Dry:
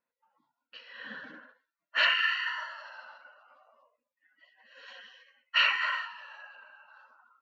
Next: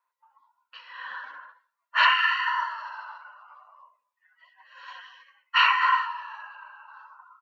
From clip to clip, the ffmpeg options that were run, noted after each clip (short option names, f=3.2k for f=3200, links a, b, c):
-filter_complex "[0:a]highpass=f=1k:t=q:w=6.2,asplit=2[a][b];[b]adelay=88,lowpass=f=2k:p=1,volume=-23dB,asplit=2[c][d];[d]adelay=88,lowpass=f=2k:p=1,volume=0.47,asplit=2[e][f];[f]adelay=88,lowpass=f=2k:p=1,volume=0.47[g];[a][c][e][g]amix=inputs=4:normalize=0,volume=1dB"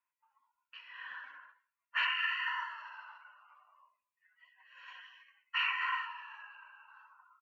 -af "firequalizer=gain_entry='entry(270,0);entry(400,-7);entry(1200,-3);entry(2500,8);entry(3900,-8);entry(7400,2)':delay=0.05:min_phase=1,alimiter=limit=-13.5dB:level=0:latency=1:release=278,volume=-8.5dB"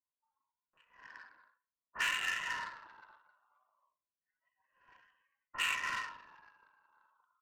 -filter_complex "[0:a]adynamicsmooth=sensitivity=6:basefreq=660,acrossover=split=1100[a][b];[b]adelay=40[c];[a][c]amix=inputs=2:normalize=0"